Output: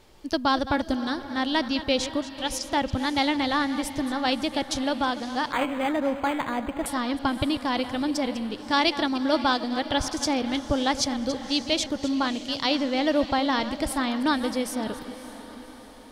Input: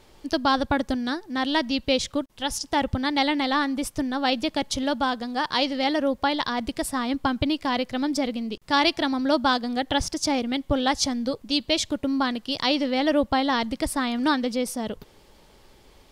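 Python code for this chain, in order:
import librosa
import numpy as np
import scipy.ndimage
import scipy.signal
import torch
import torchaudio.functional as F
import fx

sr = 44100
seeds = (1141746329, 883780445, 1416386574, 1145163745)

y = fx.reverse_delay(x, sr, ms=153, wet_db=-13)
y = fx.echo_diffused(y, sr, ms=572, feedback_pct=53, wet_db=-14.0)
y = fx.resample_linear(y, sr, factor=8, at=(5.52, 6.86))
y = y * 10.0 ** (-1.5 / 20.0)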